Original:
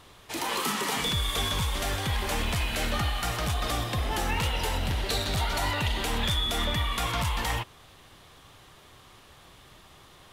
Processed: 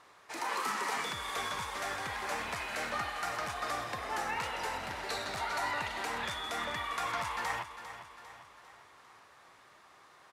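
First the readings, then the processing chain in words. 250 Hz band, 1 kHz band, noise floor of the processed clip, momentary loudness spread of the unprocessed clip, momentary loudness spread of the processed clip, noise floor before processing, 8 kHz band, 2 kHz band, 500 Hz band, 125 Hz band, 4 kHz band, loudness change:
-12.5 dB, -2.5 dB, -60 dBFS, 3 LU, 12 LU, -54 dBFS, -9.0 dB, -3.0 dB, -6.5 dB, -20.5 dB, -11.5 dB, -7.0 dB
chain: band-pass filter 1.9 kHz, Q 0.57; peaking EQ 3.2 kHz -12 dB 0.79 oct; feedback delay 400 ms, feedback 51%, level -12 dB

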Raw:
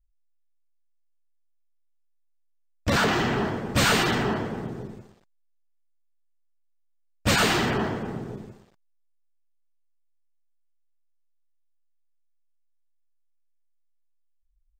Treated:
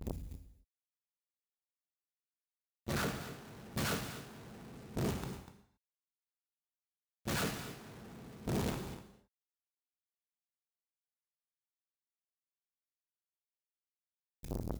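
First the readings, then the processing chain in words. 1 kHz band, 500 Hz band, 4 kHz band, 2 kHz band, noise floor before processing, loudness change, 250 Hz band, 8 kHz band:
-17.0 dB, -14.0 dB, -17.0 dB, -17.5 dB, -67 dBFS, -16.0 dB, -12.5 dB, -12.5 dB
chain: one-bit comparator; high-pass 44 Hz 12 dB/octave; gate with hold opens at -25 dBFS; bass shelf 280 Hz +9 dB; on a send: delay 244 ms -14 dB; on the sum: gated-style reverb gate 300 ms falling, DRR 5 dB; transformer saturation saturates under 460 Hz; trim -4.5 dB

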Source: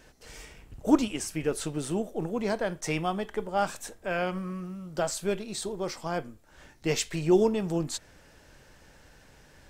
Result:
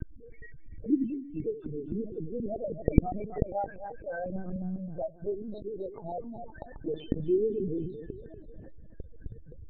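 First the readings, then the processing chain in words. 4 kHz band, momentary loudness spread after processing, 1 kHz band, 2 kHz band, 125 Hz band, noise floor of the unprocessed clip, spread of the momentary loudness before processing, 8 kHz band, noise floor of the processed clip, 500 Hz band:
under -20 dB, 22 LU, -6.5 dB, -13.0 dB, -0.5 dB, -57 dBFS, 13 LU, under -40 dB, -49 dBFS, -3.5 dB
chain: jump at every zero crossing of -29.5 dBFS; loudest bins only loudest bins 4; two-band feedback delay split 380 Hz, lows 92 ms, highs 265 ms, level -9.5 dB; LPC vocoder at 8 kHz pitch kept; loudness maximiser -4.5 dB; trim -1 dB

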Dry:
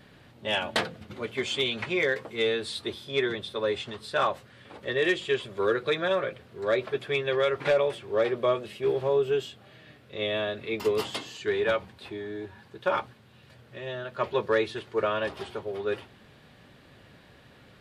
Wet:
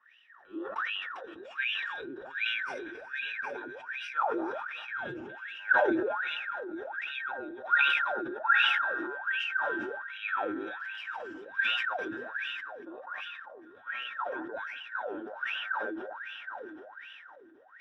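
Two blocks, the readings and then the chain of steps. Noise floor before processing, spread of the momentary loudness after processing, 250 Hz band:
-55 dBFS, 16 LU, -3.5 dB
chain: every band turned upside down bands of 2 kHz; peaking EQ 160 Hz -14.5 dB 0.21 oct; echo whose repeats swap between lows and highs 199 ms, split 1.4 kHz, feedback 80%, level -7 dB; wah-wah 1.3 Hz 320–2900 Hz, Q 21; decay stretcher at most 27 dB/s; trim +6 dB

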